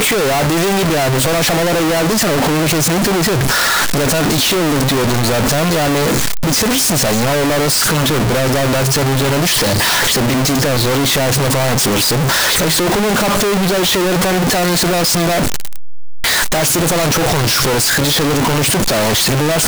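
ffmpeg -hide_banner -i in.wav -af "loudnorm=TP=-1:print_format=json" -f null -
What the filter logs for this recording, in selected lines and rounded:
"input_i" : "-13.2",
"input_tp" : "-7.6",
"input_lra" : "1.1",
"input_thresh" : "-23.2",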